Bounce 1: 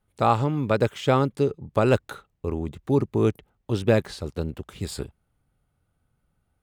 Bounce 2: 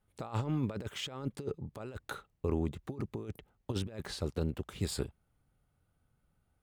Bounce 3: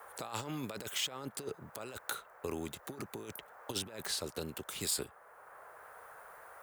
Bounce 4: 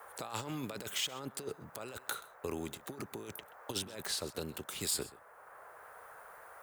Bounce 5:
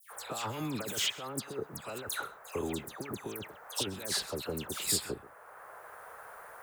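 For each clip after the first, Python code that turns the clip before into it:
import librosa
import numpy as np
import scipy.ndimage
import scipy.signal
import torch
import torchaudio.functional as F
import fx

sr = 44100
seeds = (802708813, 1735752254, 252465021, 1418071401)

y1 = fx.over_compress(x, sr, threshold_db=-26.0, ratio=-0.5)
y1 = y1 * 10.0 ** (-8.0 / 20.0)
y2 = fx.riaa(y1, sr, side='recording')
y2 = fx.dmg_noise_band(y2, sr, seeds[0], low_hz=460.0, high_hz=1600.0, level_db=-60.0)
y2 = fx.band_squash(y2, sr, depth_pct=40)
y3 = y2 + 10.0 ** (-19.0 / 20.0) * np.pad(y2, (int(129 * sr / 1000.0), 0))[:len(y2)]
y4 = fx.dispersion(y3, sr, late='lows', ms=113.0, hz=2200.0)
y4 = y4 * 10.0 ** (4.0 / 20.0)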